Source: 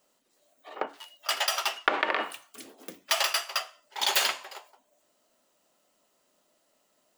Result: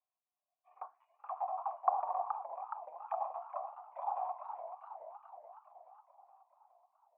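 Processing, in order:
envelope filter 800–2,900 Hz, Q 3.4, down, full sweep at −24.5 dBFS
formant resonators in series a
feedback echo with a swinging delay time 423 ms, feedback 60%, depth 178 cents, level −8 dB
level +7 dB

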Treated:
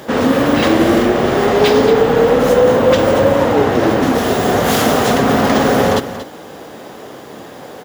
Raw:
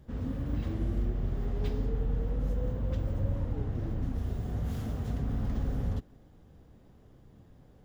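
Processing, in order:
high-pass filter 470 Hz 12 dB per octave
on a send: single-tap delay 232 ms −12.5 dB
on the sum: boost into a limiter +35.5 dB
level −1 dB

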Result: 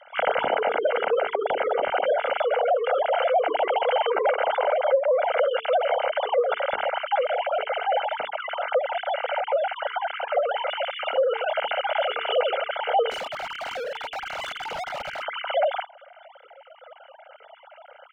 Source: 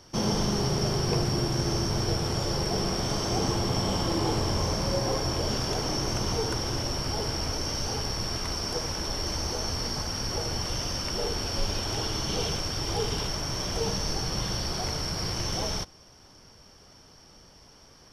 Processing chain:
three sine waves on the formant tracks
gate on every frequency bin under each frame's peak −25 dB strong
low-pass filter 2,600 Hz 6 dB per octave
mains-hum notches 50/100/150/200/250/300/350/400/450 Hz
comb filter 1.4 ms, depth 80%
downward compressor 4 to 1, threshold −24 dBFS, peak gain reduction 10 dB
0:13.10–0:15.23: hard clipping −35 dBFS, distortion −15 dB
level +5.5 dB

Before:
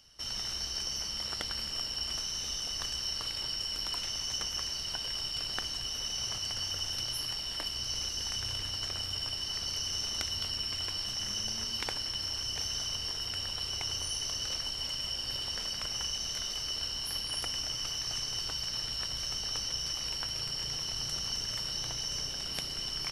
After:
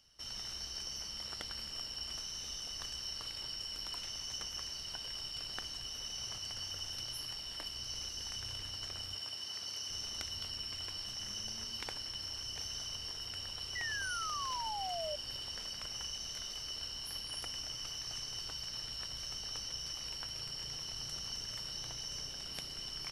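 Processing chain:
0:09.16–0:09.90: high-pass filter 250 Hz 6 dB per octave
0:13.75–0:15.16: sound drawn into the spectrogram fall 580–2,000 Hz −33 dBFS
level −7 dB

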